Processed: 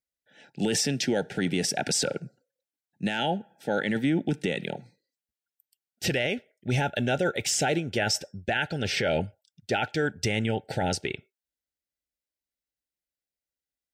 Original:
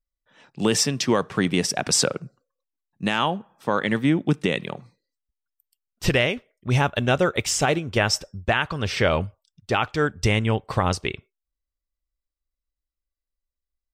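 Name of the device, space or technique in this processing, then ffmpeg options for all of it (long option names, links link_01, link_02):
PA system with an anti-feedback notch: -af "highpass=130,asuperstop=centerf=1100:order=20:qfactor=2.3,alimiter=limit=-17dB:level=0:latency=1:release=15"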